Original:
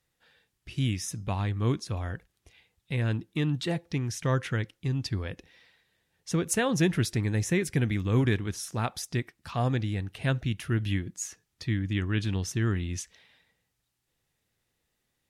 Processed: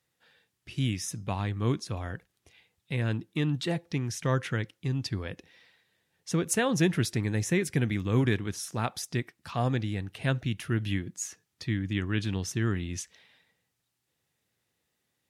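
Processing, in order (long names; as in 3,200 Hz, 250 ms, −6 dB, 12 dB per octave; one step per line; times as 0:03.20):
high-pass filter 96 Hz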